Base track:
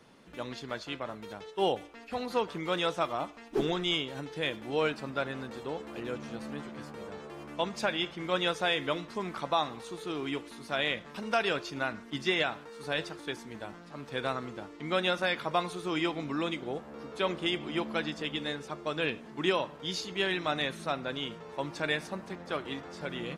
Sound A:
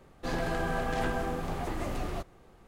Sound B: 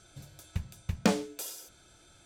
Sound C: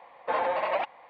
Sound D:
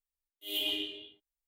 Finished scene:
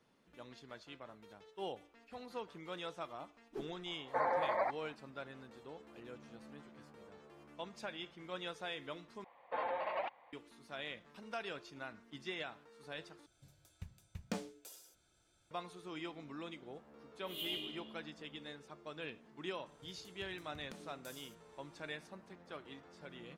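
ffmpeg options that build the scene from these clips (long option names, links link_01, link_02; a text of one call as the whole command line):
ffmpeg -i bed.wav -i cue0.wav -i cue1.wav -i cue2.wav -i cue3.wav -filter_complex "[3:a]asplit=2[link_01][link_02];[2:a]asplit=2[link_03][link_04];[0:a]volume=-14.5dB[link_05];[link_01]asuperstop=centerf=3000:order=8:qfactor=1.7[link_06];[link_04]acompressor=threshold=-37dB:ratio=6:attack=3.2:release=140:knee=1:detection=peak[link_07];[link_05]asplit=3[link_08][link_09][link_10];[link_08]atrim=end=9.244[link_11];[link_02]atrim=end=1.09,asetpts=PTS-STARTPTS,volume=-11dB[link_12];[link_09]atrim=start=10.326:end=13.264[link_13];[link_03]atrim=end=2.25,asetpts=PTS-STARTPTS,volume=-15dB[link_14];[link_10]atrim=start=15.506[link_15];[link_06]atrim=end=1.09,asetpts=PTS-STARTPTS,volume=-6.5dB,afade=type=in:duration=0.004:curve=hsin,afade=type=out:start_time=1.086:duration=0.004:curve=hsin,adelay=3860[link_16];[4:a]atrim=end=1.47,asetpts=PTS-STARTPTS,volume=-9.5dB,afade=type=in:duration=0.004:curve=hsin,afade=type=out:start_time=1.466:duration=0.004:curve=hsin,adelay=742644S[link_17];[link_07]atrim=end=2.25,asetpts=PTS-STARTPTS,volume=-13.5dB,afade=type=in:duration=0.004:curve=hsin,afade=type=out:start_time=2.246:duration=0.004:curve=hsin,adelay=19660[link_18];[link_11][link_12]acrossfade=duration=0.004:curve1=hsin:curve2=hsin[link_19];[link_19][link_13]acrossfade=duration=0.004:curve1=hsin:curve2=hsin[link_20];[link_20][link_14]acrossfade=duration=0.004:curve1=hsin:curve2=hsin[link_21];[link_21][link_15]acrossfade=duration=0.004:curve1=hsin:curve2=hsin[link_22];[link_22][link_16][link_17][link_18]amix=inputs=4:normalize=0" out.wav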